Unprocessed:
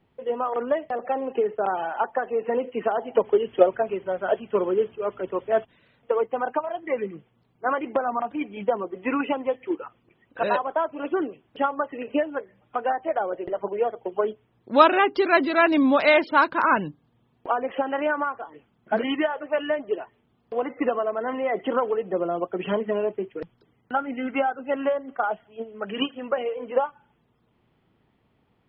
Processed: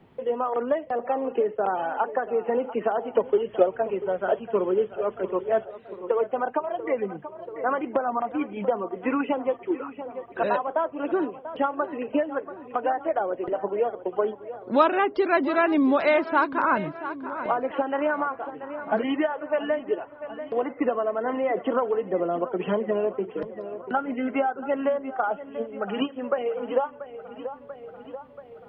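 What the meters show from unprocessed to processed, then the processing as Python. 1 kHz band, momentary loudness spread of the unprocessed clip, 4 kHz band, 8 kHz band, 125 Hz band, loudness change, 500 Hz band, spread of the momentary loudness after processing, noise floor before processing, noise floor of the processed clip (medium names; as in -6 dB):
-1.5 dB, 11 LU, -6.5 dB, no reading, +0.5 dB, -1.0 dB, -0.5 dB, 12 LU, -67 dBFS, -46 dBFS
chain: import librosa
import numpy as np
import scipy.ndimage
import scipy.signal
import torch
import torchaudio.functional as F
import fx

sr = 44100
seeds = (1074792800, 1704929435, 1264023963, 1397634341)

y = fx.high_shelf(x, sr, hz=2200.0, db=-7.0)
y = fx.echo_tape(y, sr, ms=686, feedback_pct=54, wet_db=-15, lp_hz=2900.0, drive_db=3.0, wow_cents=35)
y = fx.band_squash(y, sr, depth_pct=40)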